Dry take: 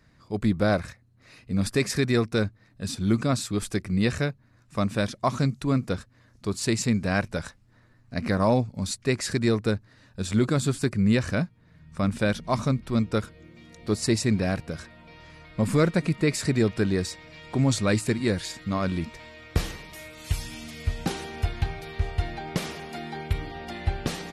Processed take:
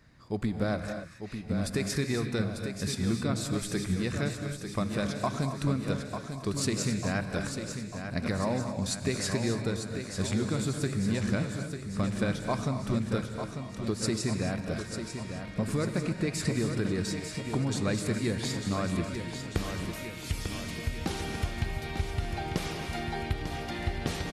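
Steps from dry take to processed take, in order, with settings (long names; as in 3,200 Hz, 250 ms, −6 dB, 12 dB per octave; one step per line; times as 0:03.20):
downward compressor, threshold −27 dBFS, peak gain reduction 11 dB
repeating echo 896 ms, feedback 56%, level −8 dB
reverb whose tail is shaped and stops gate 300 ms rising, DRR 6.5 dB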